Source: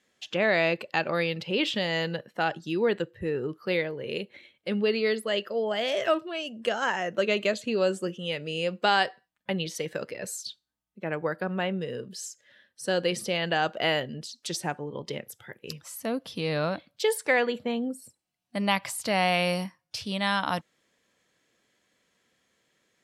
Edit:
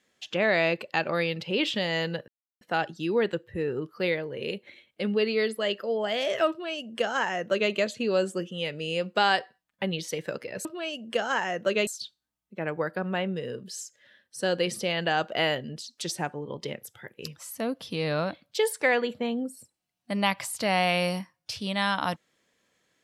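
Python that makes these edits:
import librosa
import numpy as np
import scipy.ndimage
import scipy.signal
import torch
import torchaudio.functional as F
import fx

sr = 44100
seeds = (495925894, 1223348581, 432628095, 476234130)

y = fx.edit(x, sr, fx.insert_silence(at_s=2.28, length_s=0.33),
    fx.duplicate(start_s=6.17, length_s=1.22, to_s=10.32), tone=tone)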